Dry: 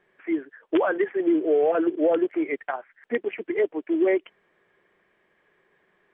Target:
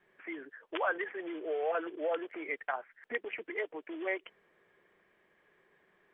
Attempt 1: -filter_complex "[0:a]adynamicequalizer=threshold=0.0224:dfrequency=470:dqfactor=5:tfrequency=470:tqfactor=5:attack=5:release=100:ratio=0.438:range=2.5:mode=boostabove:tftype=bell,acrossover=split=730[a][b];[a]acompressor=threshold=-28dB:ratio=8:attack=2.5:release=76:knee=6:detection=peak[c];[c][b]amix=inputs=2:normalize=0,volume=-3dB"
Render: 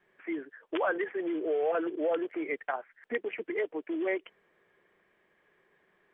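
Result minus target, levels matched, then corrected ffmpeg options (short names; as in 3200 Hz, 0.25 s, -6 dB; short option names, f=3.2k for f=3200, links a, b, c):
compressor: peak gain reduction -10.5 dB
-filter_complex "[0:a]adynamicequalizer=threshold=0.0224:dfrequency=470:dqfactor=5:tfrequency=470:tqfactor=5:attack=5:release=100:ratio=0.438:range=2.5:mode=boostabove:tftype=bell,acrossover=split=730[a][b];[a]acompressor=threshold=-40dB:ratio=8:attack=2.5:release=76:knee=6:detection=peak[c];[c][b]amix=inputs=2:normalize=0,volume=-3dB"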